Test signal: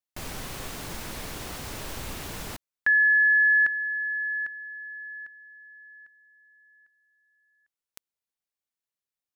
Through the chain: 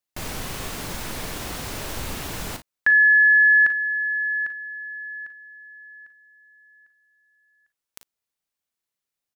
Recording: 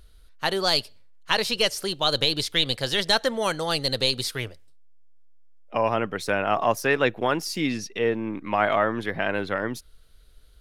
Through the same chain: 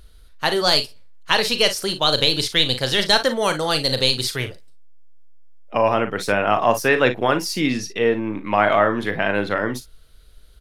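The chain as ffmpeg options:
ffmpeg -i in.wav -af "aecho=1:1:39|55:0.299|0.188,volume=4.5dB" out.wav

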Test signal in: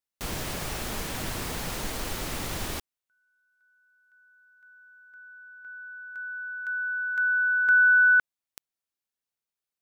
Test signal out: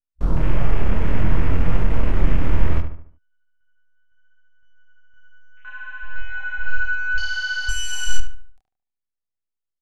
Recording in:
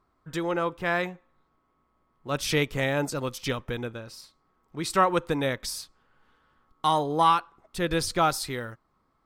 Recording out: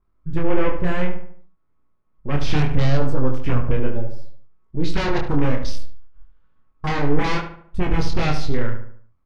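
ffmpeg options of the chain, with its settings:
ffmpeg -i in.wav -filter_complex "[0:a]aeval=exprs='if(lt(val(0),0),0.251*val(0),val(0))':channel_layout=same,bandreject=frequency=760:width=12,aeval=exprs='0.316*sin(PI/2*7.08*val(0)/0.316)':channel_layout=same,afwtdn=0.0794,adynamicequalizer=threshold=0.0178:dfrequency=9100:dqfactor=0.96:tfrequency=9100:tqfactor=0.96:attack=5:release=100:ratio=0.375:range=2:mode=boostabove:tftype=bell,flanger=delay=22.5:depth=5.2:speed=0.64,aemphasis=mode=reproduction:type=bsi,asplit=2[link_01][link_02];[link_02]adelay=73,lowpass=frequency=2500:poles=1,volume=-7.5dB,asplit=2[link_03][link_04];[link_04]adelay=73,lowpass=frequency=2500:poles=1,volume=0.45,asplit=2[link_05][link_06];[link_06]adelay=73,lowpass=frequency=2500:poles=1,volume=0.45,asplit=2[link_07][link_08];[link_08]adelay=73,lowpass=frequency=2500:poles=1,volume=0.45,asplit=2[link_09][link_10];[link_10]adelay=73,lowpass=frequency=2500:poles=1,volume=0.45[link_11];[link_03][link_05][link_07][link_09][link_11]amix=inputs=5:normalize=0[link_12];[link_01][link_12]amix=inputs=2:normalize=0,volume=-7dB" out.wav

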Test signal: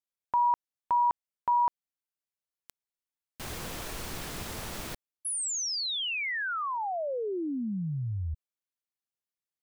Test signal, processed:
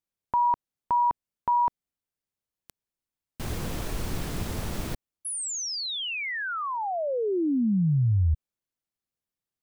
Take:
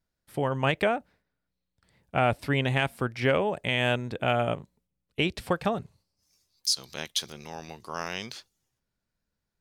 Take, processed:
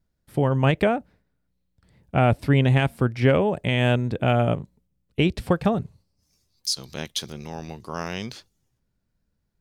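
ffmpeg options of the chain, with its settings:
ffmpeg -i in.wav -af "lowshelf=frequency=430:gain=11" out.wav

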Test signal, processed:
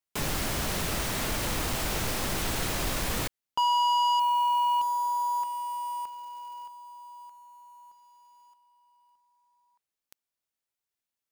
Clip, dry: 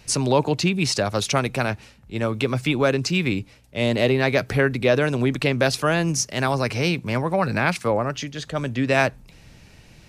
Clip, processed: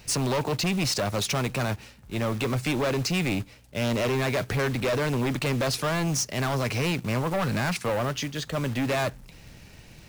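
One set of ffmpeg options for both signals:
ffmpeg -i in.wav -af "acrusher=bits=3:mode=log:mix=0:aa=0.000001,volume=23dB,asoftclip=hard,volume=-23dB" out.wav

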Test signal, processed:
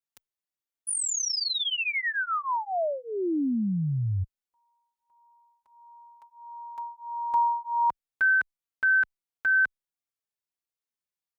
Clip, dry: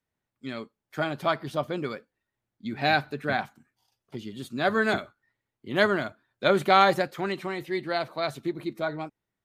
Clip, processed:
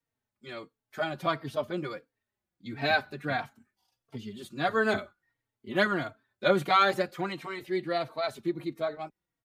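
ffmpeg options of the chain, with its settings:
ffmpeg -i in.wav -filter_complex "[0:a]asplit=2[link_01][link_02];[link_02]adelay=3.8,afreqshift=-1.5[link_03];[link_01][link_03]amix=inputs=2:normalize=1" out.wav

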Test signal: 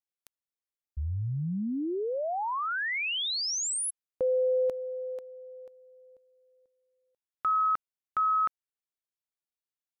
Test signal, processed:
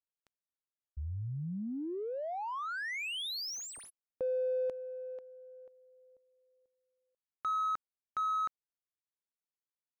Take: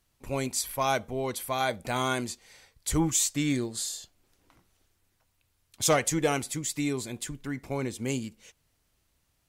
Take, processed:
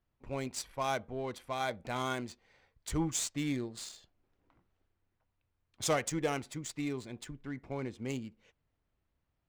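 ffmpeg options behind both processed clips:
ffmpeg -i in.wav -af "adynamicsmooth=sensitivity=7.5:basefreq=2300,volume=-6.5dB" out.wav

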